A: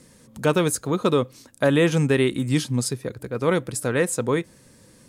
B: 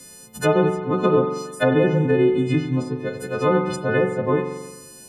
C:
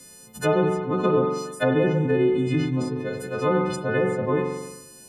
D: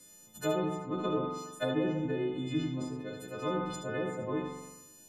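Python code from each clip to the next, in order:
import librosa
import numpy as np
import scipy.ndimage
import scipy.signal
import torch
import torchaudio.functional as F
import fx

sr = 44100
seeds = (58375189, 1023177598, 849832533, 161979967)

y1 = fx.freq_snap(x, sr, grid_st=3)
y1 = fx.env_lowpass_down(y1, sr, base_hz=1000.0, full_db=-16.0)
y1 = fx.rev_spring(y1, sr, rt60_s=1.2, pass_ms=(43,), chirp_ms=65, drr_db=5.0)
y1 = y1 * 10.0 ** (2.0 / 20.0)
y2 = fx.sustainer(y1, sr, db_per_s=52.0)
y2 = y2 * 10.0 ** (-3.5 / 20.0)
y3 = fx.comb_fb(y2, sr, f0_hz=320.0, decay_s=0.2, harmonics='all', damping=0.0, mix_pct=80)
y3 = y3 + 10.0 ** (-8.5 / 20.0) * np.pad(y3, (int(74 * sr / 1000.0), 0))[:len(y3)]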